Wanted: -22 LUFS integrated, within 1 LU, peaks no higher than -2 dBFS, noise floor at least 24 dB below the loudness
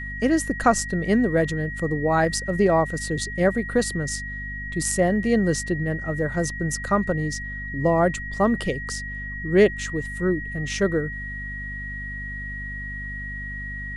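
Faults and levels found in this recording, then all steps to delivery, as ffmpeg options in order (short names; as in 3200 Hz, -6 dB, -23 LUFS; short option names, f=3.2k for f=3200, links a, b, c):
hum 50 Hz; harmonics up to 250 Hz; hum level -33 dBFS; steady tone 1900 Hz; tone level -32 dBFS; loudness -24.0 LUFS; peak -5.0 dBFS; loudness target -22.0 LUFS
-> -af "bandreject=f=50:t=h:w=6,bandreject=f=100:t=h:w=6,bandreject=f=150:t=h:w=6,bandreject=f=200:t=h:w=6,bandreject=f=250:t=h:w=6"
-af "bandreject=f=1.9k:w=30"
-af "volume=2dB"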